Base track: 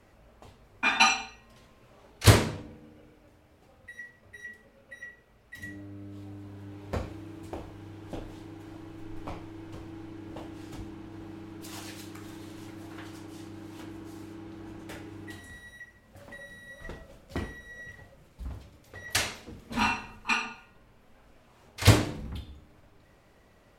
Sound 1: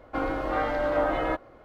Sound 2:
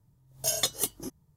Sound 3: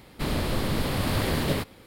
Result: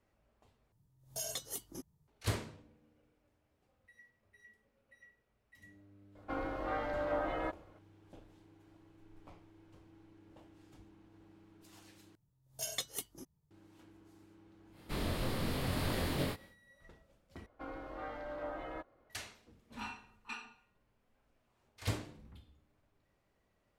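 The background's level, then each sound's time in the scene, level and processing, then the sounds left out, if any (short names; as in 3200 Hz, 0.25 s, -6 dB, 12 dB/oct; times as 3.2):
base track -17.5 dB
0.72 replace with 2 -8 dB + limiter -21 dBFS
6.15 add 1 -10 dB
12.15 replace with 2 -12.5 dB + dynamic EQ 2300 Hz, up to +6 dB, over -47 dBFS, Q 1.4
14.7 add 3 -11 dB, fades 0.10 s + doubler 23 ms -2.5 dB
17.46 replace with 1 -17 dB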